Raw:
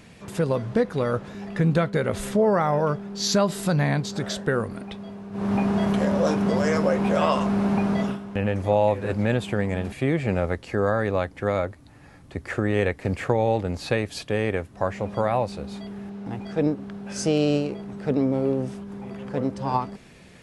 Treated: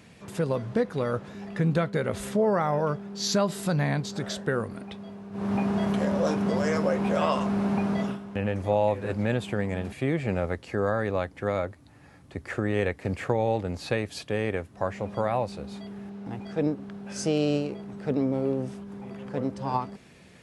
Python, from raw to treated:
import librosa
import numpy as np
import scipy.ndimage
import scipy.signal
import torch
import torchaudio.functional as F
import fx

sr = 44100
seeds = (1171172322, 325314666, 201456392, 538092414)

y = scipy.signal.sosfilt(scipy.signal.butter(2, 59.0, 'highpass', fs=sr, output='sos'), x)
y = y * 10.0 ** (-3.5 / 20.0)